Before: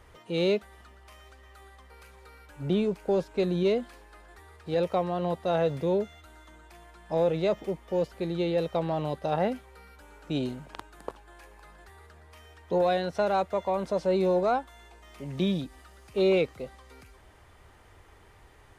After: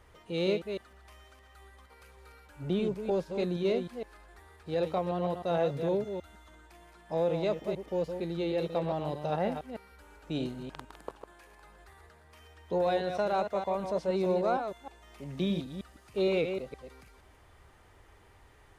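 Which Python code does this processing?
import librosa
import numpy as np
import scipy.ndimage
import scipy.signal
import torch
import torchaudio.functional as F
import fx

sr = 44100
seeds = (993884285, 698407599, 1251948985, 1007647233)

y = fx.reverse_delay(x, sr, ms=155, wet_db=-7)
y = y * librosa.db_to_amplitude(-4.0)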